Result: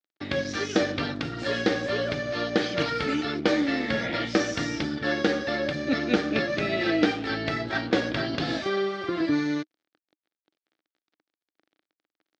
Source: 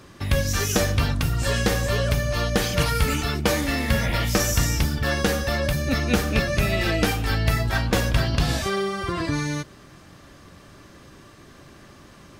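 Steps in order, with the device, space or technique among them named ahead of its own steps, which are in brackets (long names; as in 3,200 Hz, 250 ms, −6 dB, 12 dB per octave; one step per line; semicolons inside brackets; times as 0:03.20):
blown loudspeaker (dead-zone distortion −38.5 dBFS; loudspeaker in its box 240–4,500 Hz, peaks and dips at 310 Hz +9 dB, 1,000 Hz −9 dB, 2,700 Hz −5 dB)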